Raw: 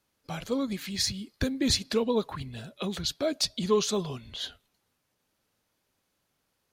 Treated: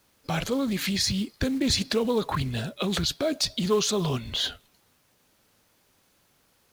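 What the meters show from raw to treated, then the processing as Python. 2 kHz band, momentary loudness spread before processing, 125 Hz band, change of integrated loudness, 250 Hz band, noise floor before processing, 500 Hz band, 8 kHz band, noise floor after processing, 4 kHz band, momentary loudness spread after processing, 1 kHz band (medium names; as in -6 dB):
+6.0 dB, 12 LU, +6.5 dB, +3.0 dB, +3.5 dB, -78 dBFS, +1.5 dB, +3.0 dB, -66 dBFS, +3.5 dB, 6 LU, +4.5 dB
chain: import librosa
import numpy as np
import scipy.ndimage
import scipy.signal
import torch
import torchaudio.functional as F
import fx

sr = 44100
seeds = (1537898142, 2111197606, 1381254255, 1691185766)

p1 = fx.over_compress(x, sr, threshold_db=-36.0, ratio=-1.0)
p2 = x + (p1 * 10.0 ** (1.5 / 20.0))
p3 = fx.quant_companded(p2, sr, bits=6)
y = fx.doppler_dist(p3, sr, depth_ms=0.15)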